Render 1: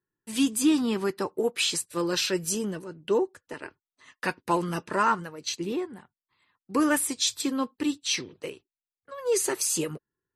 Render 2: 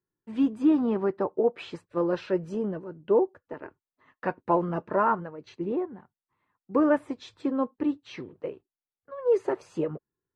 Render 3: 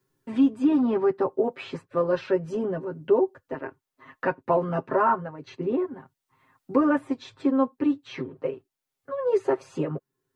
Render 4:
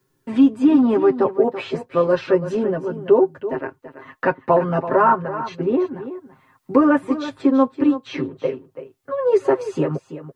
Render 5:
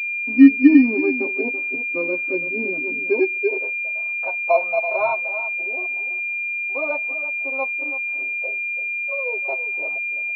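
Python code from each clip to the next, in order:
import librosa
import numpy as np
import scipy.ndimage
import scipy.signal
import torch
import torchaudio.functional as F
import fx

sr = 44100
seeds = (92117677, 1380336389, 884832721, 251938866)

y1 = scipy.signal.sosfilt(scipy.signal.butter(2, 1200.0, 'lowpass', fs=sr, output='sos'), x)
y1 = fx.dynamic_eq(y1, sr, hz=620.0, q=1.9, threshold_db=-43.0, ratio=4.0, max_db=7)
y2 = y1 + 0.94 * np.pad(y1, (int(7.5 * sr / 1000.0), 0))[:len(y1)]
y2 = fx.band_squash(y2, sr, depth_pct=40)
y3 = y2 + 10.0 ** (-12.5 / 20.0) * np.pad(y2, (int(333 * sr / 1000.0), 0))[:len(y2)]
y3 = F.gain(torch.from_numpy(y3), 6.5).numpy()
y4 = fx.filter_sweep_highpass(y3, sr, from_hz=280.0, to_hz=680.0, start_s=3.1, end_s=4.01, q=7.3)
y4 = fx.hpss(y4, sr, part='percussive', gain_db=-6)
y4 = fx.pwm(y4, sr, carrier_hz=2400.0)
y4 = F.gain(torch.from_numpy(y4), -12.0).numpy()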